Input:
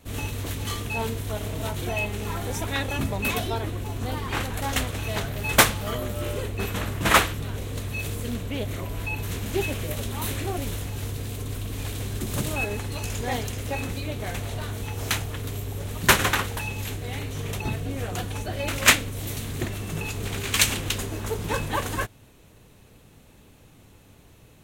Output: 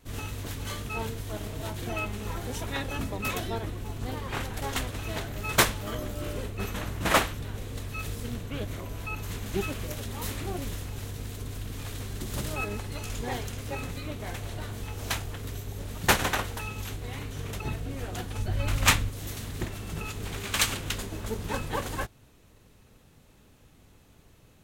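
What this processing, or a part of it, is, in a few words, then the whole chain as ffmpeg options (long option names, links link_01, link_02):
octave pedal: -filter_complex "[0:a]asplit=3[link_01][link_02][link_03];[link_01]afade=type=out:start_time=18.37:duration=0.02[link_04];[link_02]asubboost=boost=3.5:cutoff=170,afade=type=in:start_time=18.37:duration=0.02,afade=type=out:start_time=19.07:duration=0.02[link_05];[link_03]afade=type=in:start_time=19.07:duration=0.02[link_06];[link_04][link_05][link_06]amix=inputs=3:normalize=0,asplit=2[link_07][link_08];[link_08]asetrate=22050,aresample=44100,atempo=2,volume=-4dB[link_09];[link_07][link_09]amix=inputs=2:normalize=0,volume=-6dB"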